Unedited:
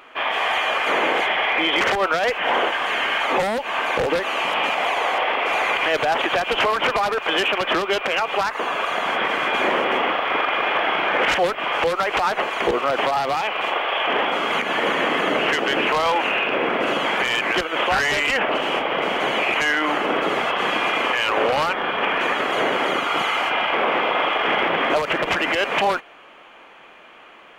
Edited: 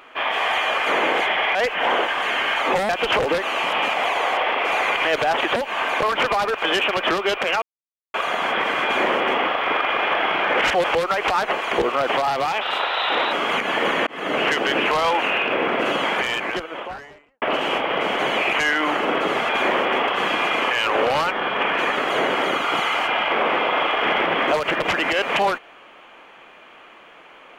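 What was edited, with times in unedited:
1.55–2.19 cut
3.53–4 swap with 6.37–6.67
8.26–8.78 mute
9.48–10.07 copy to 20.5
11.48–11.73 cut
13.5–14.34 speed 117%
15.08–15.41 fade in
17.02–18.43 studio fade out

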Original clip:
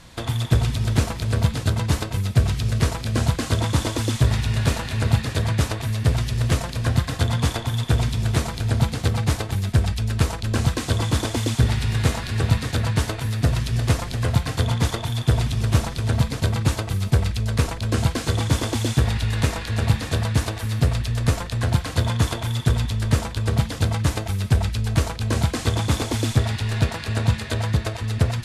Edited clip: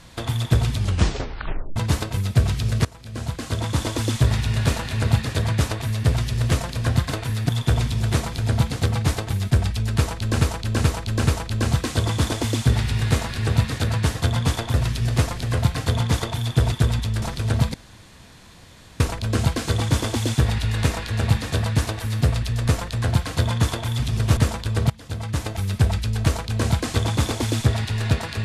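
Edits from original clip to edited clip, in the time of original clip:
0.76 tape stop 1.00 s
2.85–4.03 fade in, from -21.5 dB
7.12–7.71 swap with 13.08–13.45
10.2–10.63 loop, 4 plays
15.43–15.81 swap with 22.58–23.08
16.33–17.59 room tone
23.61–24.38 fade in, from -20.5 dB

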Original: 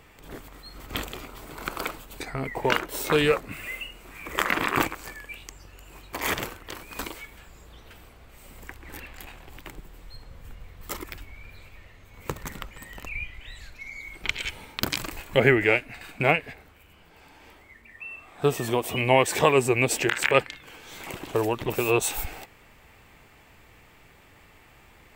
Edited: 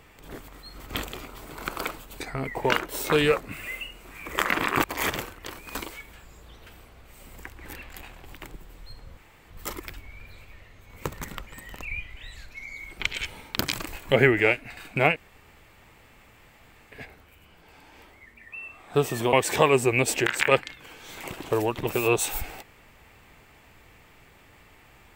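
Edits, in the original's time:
4.84–6.08 cut
10.41–10.74 room tone
16.4 insert room tone 1.76 s
18.81–19.16 cut

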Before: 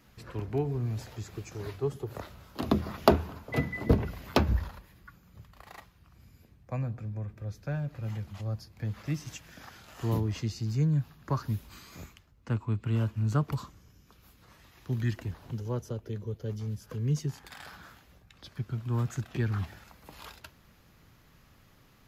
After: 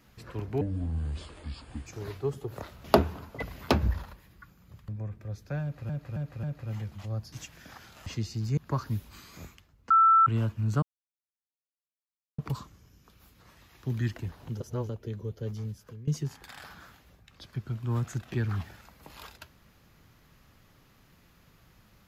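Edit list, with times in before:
0.61–1.45 speed 67%
2.43–2.98 cut
3.56–4.08 cut
5.54–7.05 cut
7.79–8.06 loop, 4 plays
8.68–9.24 cut
9.98–10.32 cut
10.83–11.16 cut
12.49–12.85 bleep 1330 Hz -16 dBFS
13.41 insert silence 1.56 s
15.63–15.92 reverse
16.62–17.1 fade out, to -19.5 dB

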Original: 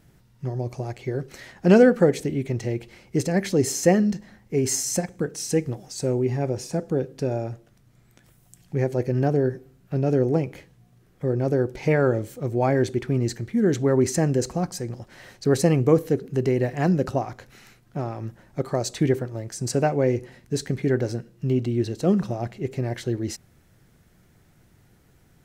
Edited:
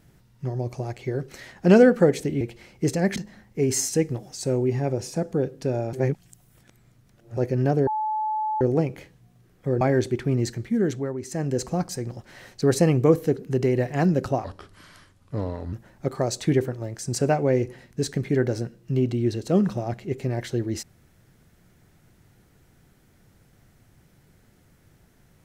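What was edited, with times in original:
2.41–2.73 cut
3.48–4.11 cut
4.84–5.46 cut
7.5–8.94 reverse
9.44–10.18 bleep 863 Hz -23 dBFS
11.38–12.64 cut
13.5–14.55 dip -13 dB, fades 0.49 s
17.27–18.26 speed 77%

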